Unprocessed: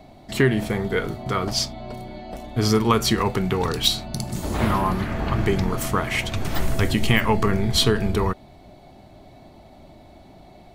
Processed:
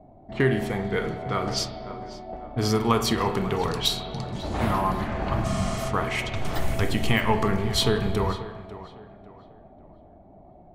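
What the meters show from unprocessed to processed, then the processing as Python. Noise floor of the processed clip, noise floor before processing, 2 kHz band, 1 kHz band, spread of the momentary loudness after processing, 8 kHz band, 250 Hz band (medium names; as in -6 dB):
-50 dBFS, -48 dBFS, -3.5 dB, -1.5 dB, 15 LU, -5.0 dB, -4.0 dB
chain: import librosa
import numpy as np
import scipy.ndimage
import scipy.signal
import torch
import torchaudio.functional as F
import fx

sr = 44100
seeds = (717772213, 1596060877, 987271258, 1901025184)

p1 = fx.env_lowpass(x, sr, base_hz=620.0, full_db=-19.0)
p2 = fx.peak_eq(p1, sr, hz=720.0, db=4.5, octaves=0.75)
p3 = p2 + fx.echo_tape(p2, sr, ms=546, feedback_pct=38, wet_db=-13.5, lp_hz=2700.0, drive_db=7.0, wow_cents=28, dry=0)
p4 = fx.rev_spring(p3, sr, rt60_s=1.1, pass_ms=(30, 35, 47), chirp_ms=25, drr_db=7.5)
p5 = fx.spec_repair(p4, sr, seeds[0], start_s=5.47, length_s=0.35, low_hz=300.0, high_hz=9800.0, source='after')
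y = F.gain(torch.from_numpy(p5), -4.5).numpy()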